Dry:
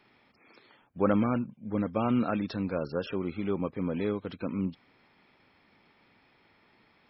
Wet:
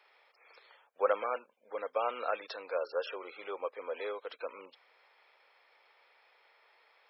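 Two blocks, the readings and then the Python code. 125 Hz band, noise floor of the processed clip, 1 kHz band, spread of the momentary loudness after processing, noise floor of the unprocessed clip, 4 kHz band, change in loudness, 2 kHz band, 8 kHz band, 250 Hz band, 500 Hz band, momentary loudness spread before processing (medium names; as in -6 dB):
under -40 dB, -69 dBFS, -0.5 dB, 12 LU, -65 dBFS, -0.5 dB, -6.0 dB, 0.0 dB, no reading, -27.5 dB, -2.0 dB, 7 LU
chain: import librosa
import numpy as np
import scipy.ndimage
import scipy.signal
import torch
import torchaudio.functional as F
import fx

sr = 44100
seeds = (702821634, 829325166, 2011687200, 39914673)

y = scipy.signal.sosfilt(scipy.signal.cheby1(4, 1.0, 480.0, 'highpass', fs=sr, output='sos'), x)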